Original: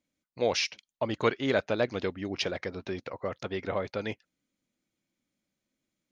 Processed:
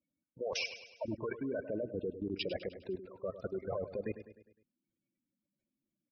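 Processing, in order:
gate on every frequency bin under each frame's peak −10 dB strong
high-shelf EQ 3,600 Hz −3 dB
output level in coarse steps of 18 dB
on a send: repeating echo 102 ms, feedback 50%, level −12 dB

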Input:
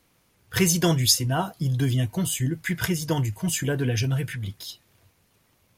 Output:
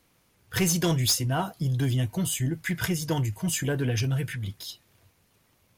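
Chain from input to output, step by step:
soft clipping −16 dBFS, distortion −16 dB
level −1 dB

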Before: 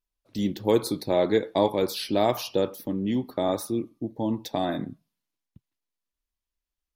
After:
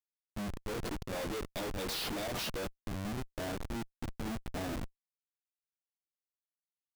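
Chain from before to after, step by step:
0:01.11–0:02.71: high shelf with overshoot 2,000 Hz +9 dB, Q 1.5
chorus effect 0.85 Hz, delay 15 ms, depth 4.8 ms
comparator with hysteresis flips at −30.5 dBFS
level −6.5 dB

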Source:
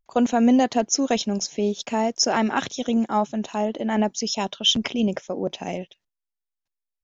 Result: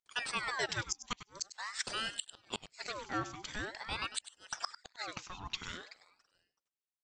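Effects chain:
low-pass filter 4,300 Hz 12 dB per octave
first difference
repeating echo 330 ms, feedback 32%, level −23 dB
gate with flip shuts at −27 dBFS, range −33 dB
single-tap delay 99 ms −13.5 dB
ring modulator whose carrier an LFO sweeps 1,400 Hz, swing 65%, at 0.46 Hz
level +8 dB

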